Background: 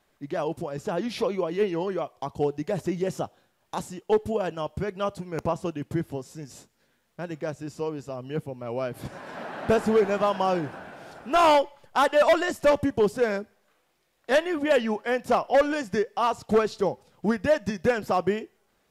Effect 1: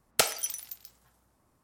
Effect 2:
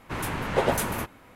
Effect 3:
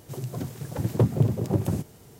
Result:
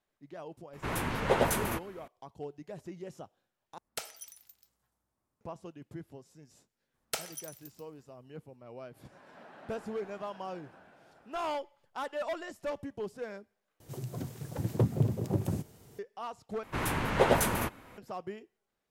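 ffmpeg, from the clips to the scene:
ffmpeg -i bed.wav -i cue0.wav -i cue1.wav -i cue2.wav -filter_complex "[2:a]asplit=2[link_01][link_02];[1:a]asplit=2[link_03][link_04];[0:a]volume=-16dB[link_05];[link_04]aecho=1:1:142:0.075[link_06];[link_05]asplit=4[link_07][link_08][link_09][link_10];[link_07]atrim=end=3.784[link_11];[link_03]atrim=end=1.63,asetpts=PTS-STARTPTS,volume=-15dB[link_12];[link_08]atrim=start=5.406:end=13.804[link_13];[3:a]atrim=end=2.19,asetpts=PTS-STARTPTS,volume=-6dB[link_14];[link_09]atrim=start=15.986:end=16.634[link_15];[link_02]atrim=end=1.35,asetpts=PTS-STARTPTS,volume=-1dB[link_16];[link_10]atrim=start=17.976[link_17];[link_01]atrim=end=1.35,asetpts=PTS-STARTPTS,volume=-3dB,afade=type=in:duration=0.004:curve=hsin,afade=type=out:start_time=1.346:duration=0.004:curve=hsin,adelay=730[link_18];[link_06]atrim=end=1.63,asetpts=PTS-STARTPTS,volume=-11dB,afade=type=in:duration=0.004:curve=hsin,afade=type=out:start_time=1.626:duration=0.004:curve=hsin,adelay=6940[link_19];[link_11][link_12]acrossfade=duration=0.004:curve1=hsin:curve2=hsin[link_20];[link_20][link_13]acrossfade=duration=0.004:curve1=hsin:curve2=hsin[link_21];[link_21][link_14]acrossfade=duration=0.004:curve1=hsin:curve2=hsin[link_22];[link_22][link_15]acrossfade=duration=0.004:curve1=hsin:curve2=hsin[link_23];[link_23][link_16]acrossfade=duration=0.004:curve1=hsin:curve2=hsin[link_24];[link_24][link_17]acrossfade=duration=0.004:curve1=hsin:curve2=hsin[link_25];[link_25][link_18][link_19]amix=inputs=3:normalize=0" out.wav

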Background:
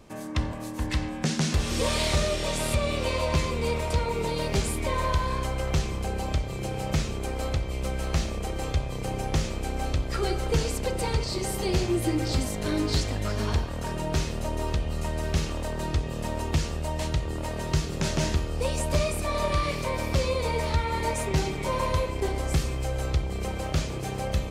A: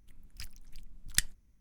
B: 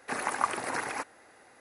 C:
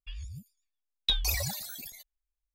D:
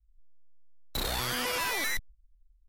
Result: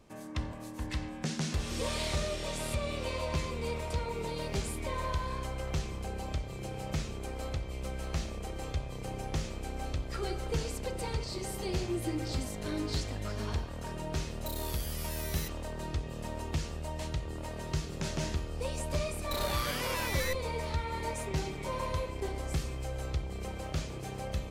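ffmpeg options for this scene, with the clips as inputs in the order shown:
ffmpeg -i bed.wav -i cue0.wav -i cue1.wav -i cue2.wav -i cue3.wav -filter_complex "[4:a]asplit=2[link_01][link_02];[0:a]volume=-8dB[link_03];[link_01]aderivative,atrim=end=2.68,asetpts=PTS-STARTPTS,volume=-7dB,afade=type=in:duration=0.004:curve=hsin,afade=type=out:start_time=2.676:duration=0.004:curve=hsin,adelay=13510[link_04];[link_02]atrim=end=2.68,asetpts=PTS-STARTPTS,volume=-5dB,afade=type=in:duration=0.004:curve=hsin,afade=type=out:start_time=2.676:duration=0.004:curve=hsin,adelay=18360[link_05];[link_03][link_04][link_05]amix=inputs=3:normalize=0" out.wav

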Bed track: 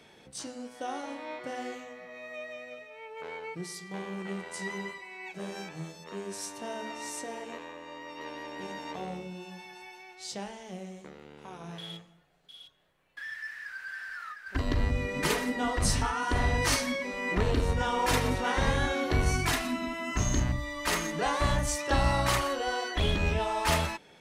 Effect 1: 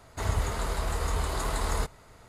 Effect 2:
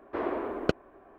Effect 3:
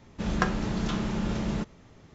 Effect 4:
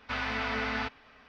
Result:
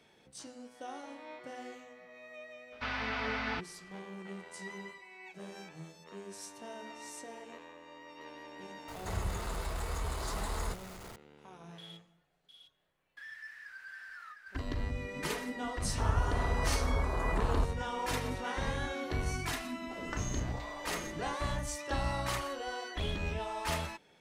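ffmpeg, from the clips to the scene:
ffmpeg -i bed.wav -i cue0.wav -i cue1.wav -i cue2.wav -i cue3.wav -filter_complex "[1:a]asplit=2[link_01][link_02];[0:a]volume=-8dB[link_03];[link_01]aeval=exprs='val(0)+0.5*0.0158*sgn(val(0))':channel_layout=same[link_04];[link_02]afwtdn=0.0251[link_05];[3:a]aeval=exprs='val(0)*sin(2*PI*470*n/s+470*0.8/1*sin(2*PI*1*n/s))':channel_layout=same[link_06];[4:a]atrim=end=1.28,asetpts=PTS-STARTPTS,volume=-3.5dB,afade=type=in:duration=0.004:curve=hsin,afade=type=out:start_time=1.276:duration=0.004:curve=hsin,adelay=2720[link_07];[link_04]atrim=end=2.28,asetpts=PTS-STARTPTS,volume=-8.5dB,afade=type=in:duration=0.004:curve=hsin,afade=type=out:start_time=2.276:duration=0.004:curve=hsin,adelay=8880[link_08];[link_05]atrim=end=2.28,asetpts=PTS-STARTPTS,volume=-2dB,afade=type=in:duration=0.004:curve=hsin,afade=type=out:start_time=2.276:duration=0.004:curve=hsin,adelay=15800[link_09];[link_06]atrim=end=2.14,asetpts=PTS-STARTPTS,volume=-14dB,afade=type=in:duration=0.004:curve=hsin,afade=type=out:start_time=2.136:duration=0.004:curve=hsin,adelay=19710[link_10];[link_03][link_07][link_08][link_09][link_10]amix=inputs=5:normalize=0" out.wav

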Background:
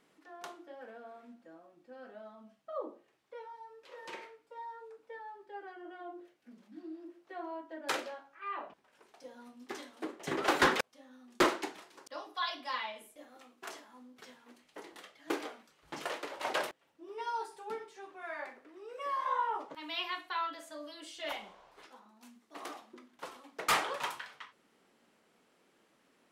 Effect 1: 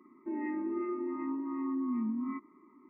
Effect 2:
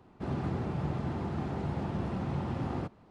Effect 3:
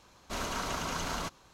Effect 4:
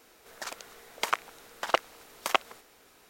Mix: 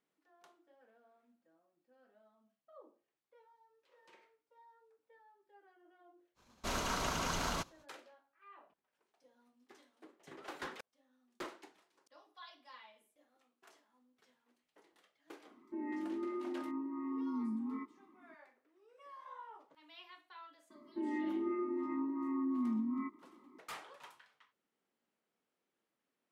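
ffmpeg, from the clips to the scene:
ffmpeg -i bed.wav -i cue0.wav -i cue1.wav -i cue2.wav -filter_complex "[1:a]asplit=2[link_01][link_02];[0:a]volume=-18.5dB[link_03];[3:a]agate=range=-33dB:threshold=-54dB:ratio=3:release=100:detection=peak,atrim=end=1.53,asetpts=PTS-STARTPTS,volume=-1.5dB,afade=type=in:duration=0.05,afade=type=out:start_time=1.48:duration=0.05,adelay=279594S[link_04];[link_01]atrim=end=2.89,asetpts=PTS-STARTPTS,volume=-5dB,afade=type=in:duration=0.004:curve=hsin,afade=type=out:start_time=2.886:duration=0.004:curve=hsin,adelay=15460[link_05];[link_02]atrim=end=2.89,asetpts=PTS-STARTPTS,volume=-2dB,afade=type=in:duration=0.004:curve=hsin,afade=type=out:start_time=2.886:duration=0.004:curve=hsin,adelay=20700[link_06];[link_03][link_04][link_05][link_06]amix=inputs=4:normalize=0" out.wav

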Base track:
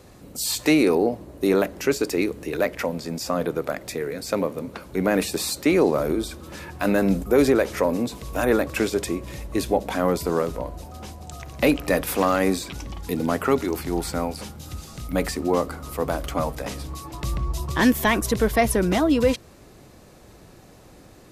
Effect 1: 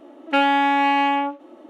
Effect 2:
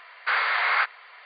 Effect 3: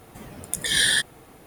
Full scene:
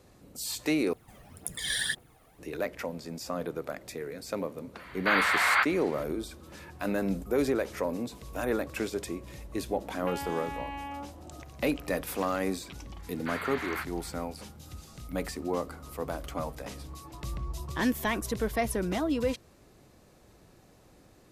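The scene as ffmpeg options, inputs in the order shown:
ffmpeg -i bed.wav -i cue0.wav -i cue1.wav -i cue2.wav -filter_complex "[2:a]asplit=2[link_01][link_02];[0:a]volume=-9.5dB[link_03];[3:a]aphaser=in_gain=1:out_gain=1:delay=1.8:decay=0.56:speed=1.9:type=triangular[link_04];[1:a]acompressor=threshold=-30dB:ratio=6:attack=3.2:release=140:knee=1:detection=peak[link_05];[link_03]asplit=2[link_06][link_07];[link_06]atrim=end=0.934[link_08];[link_04]atrim=end=1.46,asetpts=PTS-STARTPTS,volume=-12dB[link_09];[link_07]atrim=start=2.386[link_10];[link_01]atrim=end=1.25,asetpts=PTS-STARTPTS,volume=-1.5dB,afade=type=in:duration=0.004:curve=hsin,afade=type=out:start_time=1.246:duration=0.004:curve=hsin,adelay=4790[link_11];[link_05]atrim=end=1.69,asetpts=PTS-STARTPTS,volume=-6.5dB,afade=type=in:duration=0.004:curve=hsin,afade=type=out:start_time=1.686:duration=0.004:curve=hsin,adelay=9740[link_12];[link_02]atrim=end=1.25,asetpts=PTS-STARTPTS,volume=-14dB,afade=type=in:duration=0.004:curve=hsin,afade=type=out:start_time=1.246:duration=0.004:curve=hsin,adelay=12990[link_13];[link_08][link_09]acrossfade=duration=0.004:curve1=hsin:curve2=hsin[link_14];[link_14][link_10]acrossfade=duration=0.004:curve1=hsin:curve2=hsin[link_15];[link_15][link_11][link_12][link_13]amix=inputs=4:normalize=0" out.wav

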